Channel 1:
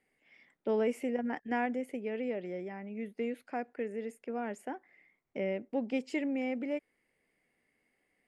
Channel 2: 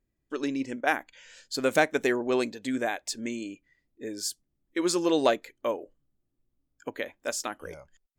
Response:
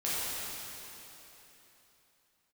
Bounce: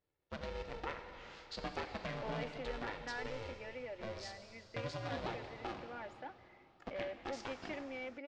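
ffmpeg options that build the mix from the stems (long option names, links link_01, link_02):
-filter_complex "[0:a]highpass=580,aecho=1:1:3.5:0.59,asoftclip=type=tanh:threshold=-32.5dB,adelay=1550,volume=-5dB[link_01];[1:a]highpass=110,acompressor=threshold=-39dB:ratio=3,aeval=exprs='val(0)*sgn(sin(2*PI*220*n/s))':channel_layout=same,volume=-6.5dB,asplit=2[link_02][link_03];[link_03]volume=-11.5dB[link_04];[2:a]atrim=start_sample=2205[link_05];[link_04][link_05]afir=irnorm=-1:irlink=0[link_06];[link_01][link_02][link_06]amix=inputs=3:normalize=0,lowpass=frequency=4900:width=0.5412,lowpass=frequency=4900:width=1.3066"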